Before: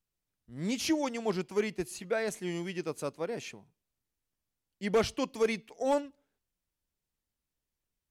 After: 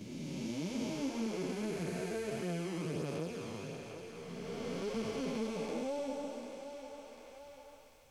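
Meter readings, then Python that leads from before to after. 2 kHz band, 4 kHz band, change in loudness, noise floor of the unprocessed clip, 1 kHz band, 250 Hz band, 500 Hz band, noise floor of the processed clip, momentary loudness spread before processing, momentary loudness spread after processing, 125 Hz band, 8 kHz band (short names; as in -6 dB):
-7.5 dB, -6.0 dB, -6.5 dB, under -85 dBFS, -7.5 dB, -2.5 dB, -6.5 dB, -56 dBFS, 9 LU, 14 LU, +1.0 dB, -6.0 dB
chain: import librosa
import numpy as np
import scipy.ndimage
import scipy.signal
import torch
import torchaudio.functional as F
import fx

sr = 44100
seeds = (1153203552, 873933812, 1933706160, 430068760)

y = fx.spec_blur(x, sr, span_ms=764.0)
y = fx.low_shelf(y, sr, hz=210.0, db=6.0)
y = fx.notch(y, sr, hz=1900.0, q=9.2)
y = fx.chorus_voices(y, sr, voices=2, hz=0.8, base_ms=10, depth_ms=2.8, mix_pct=60)
y = fx.echo_thinned(y, sr, ms=744, feedback_pct=28, hz=670.0, wet_db=-15)
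y = fx.band_squash(y, sr, depth_pct=70)
y = y * librosa.db_to_amplitude(3.5)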